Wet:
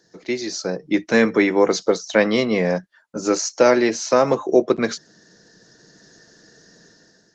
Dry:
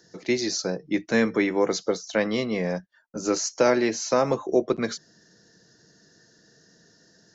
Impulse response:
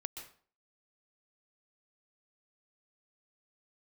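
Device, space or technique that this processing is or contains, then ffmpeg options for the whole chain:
video call: -af "highpass=frequency=160:poles=1,dynaudnorm=framelen=460:gausssize=3:maxgain=10dB" -ar 48000 -c:a libopus -b:a 20k

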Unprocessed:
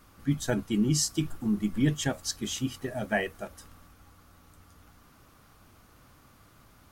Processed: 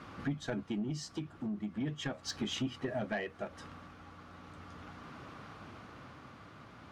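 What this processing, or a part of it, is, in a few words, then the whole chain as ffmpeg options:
AM radio: -af "highpass=110,lowpass=3300,acompressor=threshold=-42dB:ratio=5,asoftclip=type=tanh:threshold=-36.5dB,tremolo=f=0.38:d=0.38,volume=10.5dB"

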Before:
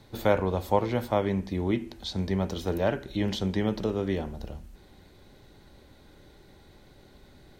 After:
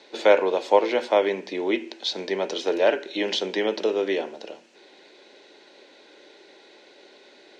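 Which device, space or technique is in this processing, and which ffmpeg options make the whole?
phone speaker on a table: -af "highpass=frequency=360:width=0.5412,highpass=frequency=360:width=1.3066,equalizer=frequency=770:width_type=q:width=4:gain=-4,equalizer=frequency=1200:width_type=q:width=4:gain=-8,equalizer=frequency=2600:width_type=q:width=4:gain=5,lowpass=frequency=6600:width=0.5412,lowpass=frequency=6600:width=1.3066,volume=8.5dB"

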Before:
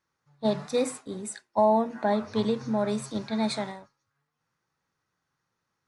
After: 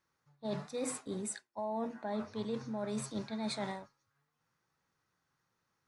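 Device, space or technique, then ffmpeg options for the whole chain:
compression on the reversed sound: -af "areverse,acompressor=threshold=-33dB:ratio=12,areverse,volume=-1dB"

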